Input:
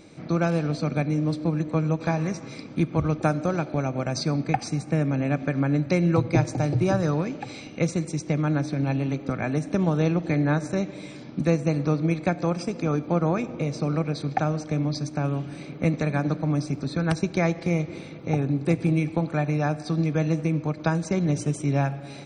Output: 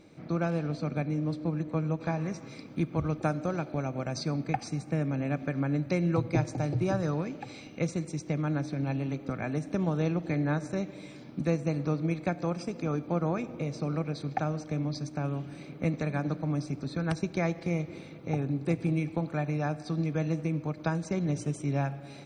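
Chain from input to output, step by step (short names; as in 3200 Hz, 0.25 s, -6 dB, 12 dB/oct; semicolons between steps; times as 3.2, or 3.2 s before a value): requantised 12-bit, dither none; high shelf 4600 Hz -7.5 dB, from 2.32 s -2 dB; gain -6 dB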